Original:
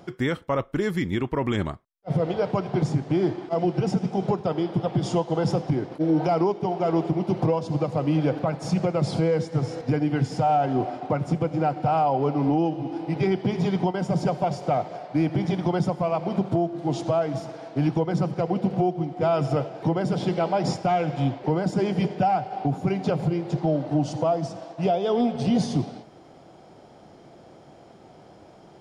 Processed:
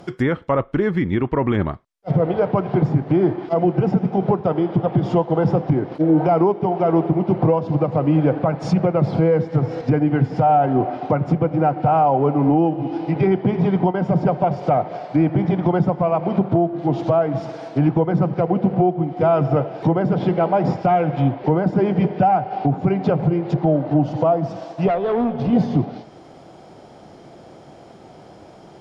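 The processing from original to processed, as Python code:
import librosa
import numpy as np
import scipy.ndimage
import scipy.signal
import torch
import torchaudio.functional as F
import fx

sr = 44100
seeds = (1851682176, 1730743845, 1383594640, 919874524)

y = fx.env_lowpass_down(x, sr, base_hz=1900.0, full_db=-21.5)
y = fx.tube_stage(y, sr, drive_db=20.0, bias=0.3, at=(24.88, 25.53))
y = y * 10.0 ** (6.0 / 20.0)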